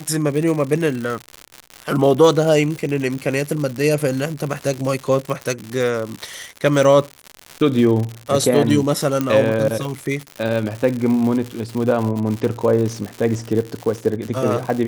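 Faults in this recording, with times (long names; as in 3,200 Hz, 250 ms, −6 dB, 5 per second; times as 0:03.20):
surface crackle 140 per second −23 dBFS
0:09.21: click −7 dBFS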